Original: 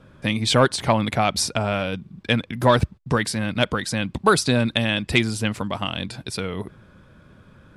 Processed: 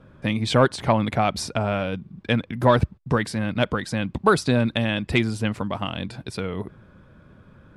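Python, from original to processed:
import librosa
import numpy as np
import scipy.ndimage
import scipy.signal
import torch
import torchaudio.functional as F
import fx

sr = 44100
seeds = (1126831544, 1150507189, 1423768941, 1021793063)

y = fx.high_shelf(x, sr, hz=2900.0, db=-9.5)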